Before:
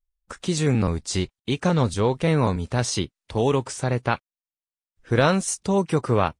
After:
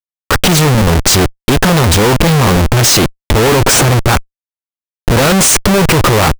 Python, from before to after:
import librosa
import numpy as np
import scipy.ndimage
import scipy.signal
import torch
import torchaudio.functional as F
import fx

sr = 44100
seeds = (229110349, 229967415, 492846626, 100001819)

y = fx.leveller(x, sr, passes=5)
y = fx.schmitt(y, sr, flips_db=-24.0)
y = y * 10.0 ** (4.0 / 20.0)